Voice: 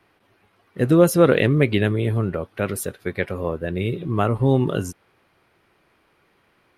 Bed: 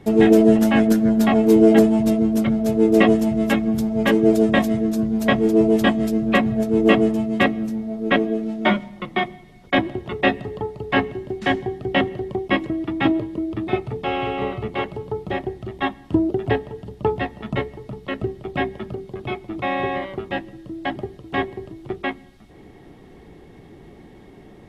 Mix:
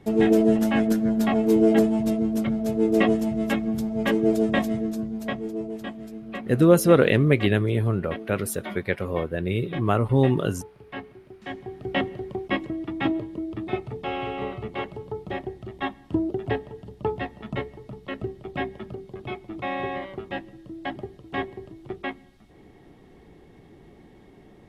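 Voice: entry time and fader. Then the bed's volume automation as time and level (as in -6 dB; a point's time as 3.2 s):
5.70 s, -1.5 dB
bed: 4.78 s -5.5 dB
5.76 s -17.5 dB
11.42 s -17.5 dB
11.85 s -6 dB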